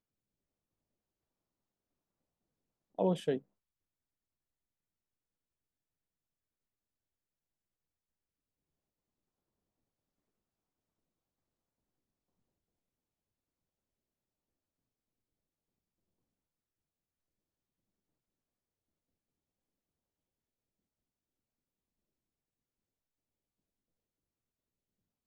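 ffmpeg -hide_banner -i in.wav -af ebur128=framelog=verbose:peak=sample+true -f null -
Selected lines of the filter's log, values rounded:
Integrated loudness:
  I:         -34.3 LUFS
  Threshold: -44.9 LUFS
Loudness range:
  LRA:         5.2 LU
  Threshold: -61.1 LUFS
  LRA low:   -45.9 LUFS
  LRA high:  -40.6 LUFS
Sample peak:
  Peak:      -18.6 dBFS
True peak:
  Peak:      -18.6 dBFS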